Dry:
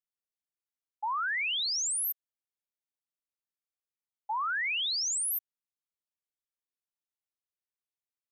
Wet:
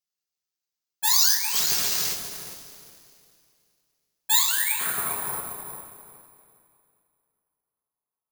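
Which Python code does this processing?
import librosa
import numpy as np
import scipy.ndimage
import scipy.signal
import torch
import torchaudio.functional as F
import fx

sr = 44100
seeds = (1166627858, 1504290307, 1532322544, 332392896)

y = fx.self_delay(x, sr, depth_ms=0.66)
y = fx.filter_sweep_lowpass(y, sr, from_hz=5300.0, to_hz=1000.0, start_s=4.16, end_s=5.12, q=3.7)
y = fx.echo_filtered(y, sr, ms=404, feedback_pct=32, hz=830.0, wet_db=-5.0)
y = fx.rev_double_slope(y, sr, seeds[0], early_s=0.32, late_s=2.5, knee_db=-15, drr_db=-4.0)
y = (np.kron(scipy.signal.resample_poly(y, 1, 4), np.eye(4)[0]) * 4)[:len(y)]
y = y * 10.0 ** (-3.5 / 20.0)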